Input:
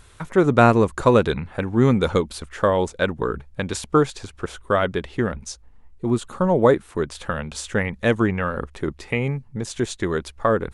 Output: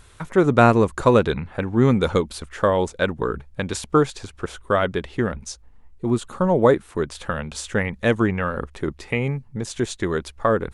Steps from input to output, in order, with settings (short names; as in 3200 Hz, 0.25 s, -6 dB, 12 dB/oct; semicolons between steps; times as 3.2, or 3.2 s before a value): 1.19–1.89 high shelf 8400 Hz -7.5 dB